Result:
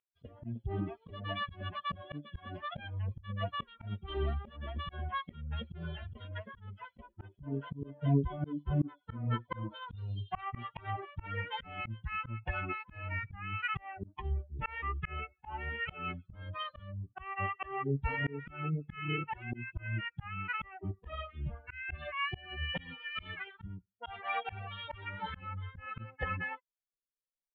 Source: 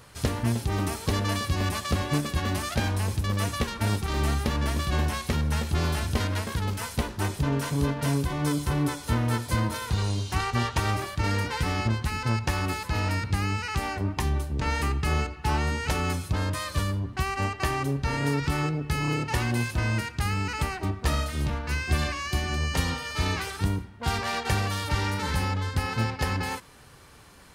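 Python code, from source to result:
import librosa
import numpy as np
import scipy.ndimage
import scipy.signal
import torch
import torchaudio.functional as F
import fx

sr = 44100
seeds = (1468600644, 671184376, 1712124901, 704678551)

y = fx.bin_expand(x, sr, power=3.0)
y = fx.auto_swell(y, sr, attack_ms=317.0)
y = scipy.signal.sosfilt(scipy.signal.cheby1(6, 1.0, 3300.0, 'lowpass', fs=sr, output='sos'), y)
y = y * librosa.db_to_amplitude(6.0)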